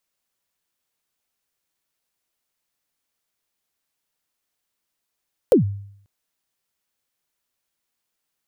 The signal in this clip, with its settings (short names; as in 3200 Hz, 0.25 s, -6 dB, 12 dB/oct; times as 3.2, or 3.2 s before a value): kick drum length 0.54 s, from 570 Hz, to 100 Hz, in 0.119 s, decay 0.66 s, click on, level -7.5 dB